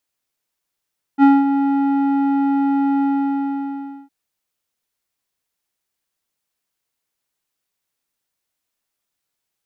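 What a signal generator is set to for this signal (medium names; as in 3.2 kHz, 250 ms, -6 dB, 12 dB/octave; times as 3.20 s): synth note square C#4 12 dB/octave, low-pass 880 Hz, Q 1.1, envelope 0.5 oct, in 0.25 s, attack 49 ms, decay 0.21 s, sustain -8.5 dB, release 1.07 s, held 1.84 s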